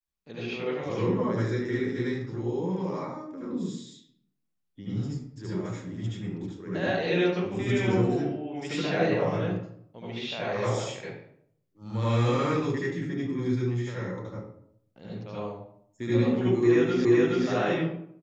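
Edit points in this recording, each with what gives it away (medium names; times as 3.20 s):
17.05 s: repeat of the last 0.42 s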